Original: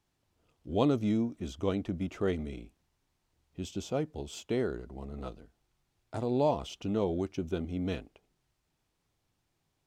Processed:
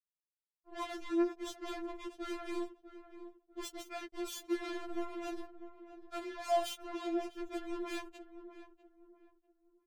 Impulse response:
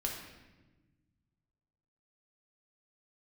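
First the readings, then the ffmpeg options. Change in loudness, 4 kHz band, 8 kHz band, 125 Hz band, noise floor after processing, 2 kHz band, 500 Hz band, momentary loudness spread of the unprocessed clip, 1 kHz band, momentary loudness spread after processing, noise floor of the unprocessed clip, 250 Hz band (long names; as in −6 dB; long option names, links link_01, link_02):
−6.5 dB, −1.0 dB, +0.5 dB, below −30 dB, below −85 dBFS, +0.5 dB, −6.5 dB, 15 LU, −1.5 dB, 19 LU, −80 dBFS, −6.5 dB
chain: -filter_complex "[0:a]lowshelf=frequency=140:gain=4.5,areverse,acompressor=threshold=-40dB:ratio=16,areverse,flanger=delay=1:depth=6.6:regen=25:speed=0.53:shape=triangular,acrusher=bits=7:mix=0:aa=0.5,asplit=2[link_01][link_02];[link_02]adelay=647,lowpass=frequency=1200:poles=1,volume=-11.5dB,asplit=2[link_03][link_04];[link_04]adelay=647,lowpass=frequency=1200:poles=1,volume=0.34,asplit=2[link_05][link_06];[link_06]adelay=647,lowpass=frequency=1200:poles=1,volume=0.34,asplit=2[link_07][link_08];[link_08]adelay=647,lowpass=frequency=1200:poles=1,volume=0.34[link_09];[link_03][link_05][link_07][link_09]amix=inputs=4:normalize=0[link_10];[link_01][link_10]amix=inputs=2:normalize=0,afftfilt=real='re*4*eq(mod(b,16),0)':imag='im*4*eq(mod(b,16),0)':win_size=2048:overlap=0.75,volume=13dB"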